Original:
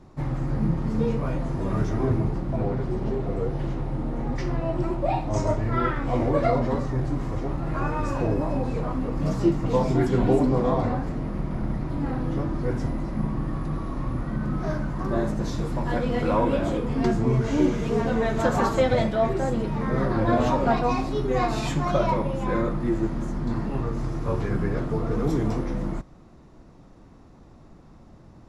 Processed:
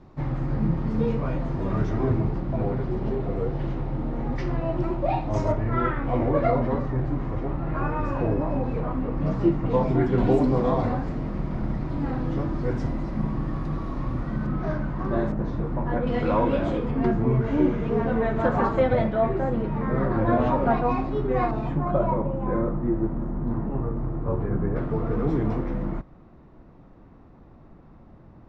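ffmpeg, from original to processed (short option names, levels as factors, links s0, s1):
-af "asetnsamples=n=441:p=0,asendcmd='5.52 lowpass f 2600;10.18 lowpass f 5600;14.47 lowpass f 3200;15.32 lowpass f 1600;16.07 lowpass f 3800;16.91 lowpass f 2100;21.51 lowpass f 1100;24.76 lowpass f 2400',lowpass=4100"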